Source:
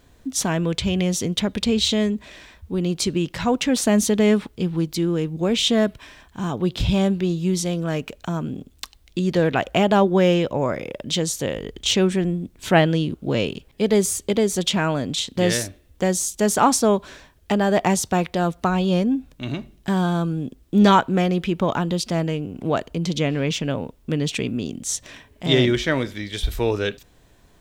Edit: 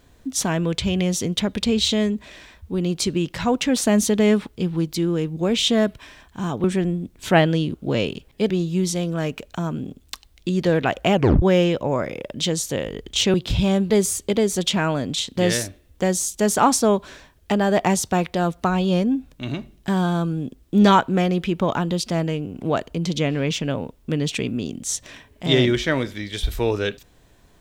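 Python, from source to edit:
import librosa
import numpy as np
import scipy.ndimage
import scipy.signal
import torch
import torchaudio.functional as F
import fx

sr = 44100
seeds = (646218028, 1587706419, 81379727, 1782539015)

y = fx.edit(x, sr, fx.swap(start_s=6.64, length_s=0.56, other_s=12.04, other_length_s=1.86),
    fx.tape_stop(start_s=9.84, length_s=0.28), tone=tone)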